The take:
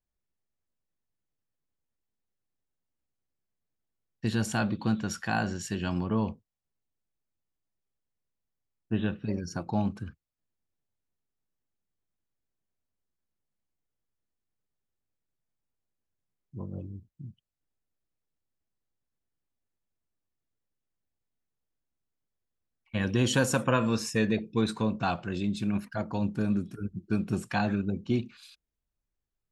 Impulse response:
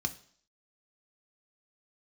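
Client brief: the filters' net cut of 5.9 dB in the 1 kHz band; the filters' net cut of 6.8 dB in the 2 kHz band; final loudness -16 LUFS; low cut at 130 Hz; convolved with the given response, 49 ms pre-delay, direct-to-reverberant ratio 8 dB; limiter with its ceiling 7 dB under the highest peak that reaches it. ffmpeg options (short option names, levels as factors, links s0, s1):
-filter_complex "[0:a]highpass=130,equalizer=f=1000:t=o:g=-6.5,equalizer=f=2000:t=o:g=-7,alimiter=limit=0.0891:level=0:latency=1,asplit=2[s0][s1];[1:a]atrim=start_sample=2205,adelay=49[s2];[s1][s2]afir=irnorm=-1:irlink=0,volume=0.282[s3];[s0][s3]amix=inputs=2:normalize=0,volume=6.31"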